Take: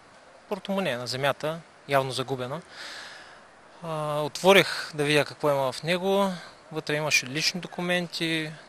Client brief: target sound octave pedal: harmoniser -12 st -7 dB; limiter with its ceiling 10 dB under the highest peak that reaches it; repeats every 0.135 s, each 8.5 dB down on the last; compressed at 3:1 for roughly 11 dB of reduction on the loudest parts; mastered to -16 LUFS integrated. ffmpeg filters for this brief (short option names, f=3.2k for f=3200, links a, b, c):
-filter_complex "[0:a]acompressor=threshold=-27dB:ratio=3,alimiter=limit=-23dB:level=0:latency=1,aecho=1:1:135|270|405|540:0.376|0.143|0.0543|0.0206,asplit=2[a][b];[b]asetrate=22050,aresample=44100,atempo=2,volume=-7dB[c];[a][c]amix=inputs=2:normalize=0,volume=18dB"